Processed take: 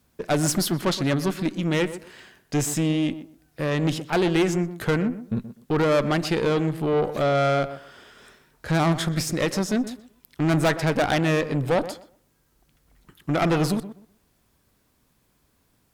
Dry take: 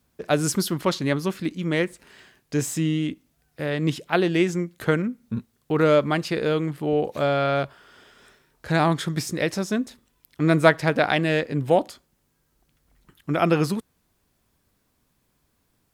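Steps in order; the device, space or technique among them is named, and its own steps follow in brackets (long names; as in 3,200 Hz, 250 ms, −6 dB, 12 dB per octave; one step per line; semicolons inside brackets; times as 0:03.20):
rockabilly slapback (tube saturation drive 21 dB, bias 0.4; tape delay 124 ms, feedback 24%, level −10.5 dB, low-pass 1,300 Hz)
level +4.5 dB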